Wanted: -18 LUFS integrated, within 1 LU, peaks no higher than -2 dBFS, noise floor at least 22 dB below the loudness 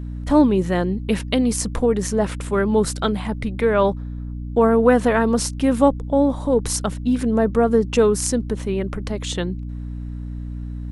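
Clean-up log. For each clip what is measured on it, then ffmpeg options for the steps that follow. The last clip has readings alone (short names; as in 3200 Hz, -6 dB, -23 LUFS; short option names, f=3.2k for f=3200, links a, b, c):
hum 60 Hz; harmonics up to 300 Hz; hum level -27 dBFS; loudness -20.0 LUFS; peak -2.5 dBFS; loudness target -18.0 LUFS
-> -af "bandreject=f=60:t=h:w=4,bandreject=f=120:t=h:w=4,bandreject=f=180:t=h:w=4,bandreject=f=240:t=h:w=4,bandreject=f=300:t=h:w=4"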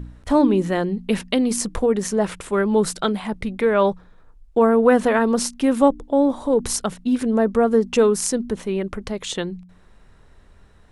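hum none; loudness -20.5 LUFS; peak -2.5 dBFS; loudness target -18.0 LUFS
-> -af "volume=2.5dB,alimiter=limit=-2dB:level=0:latency=1"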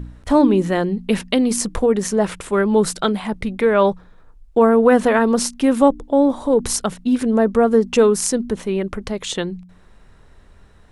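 loudness -18.0 LUFS; peak -2.0 dBFS; noise floor -48 dBFS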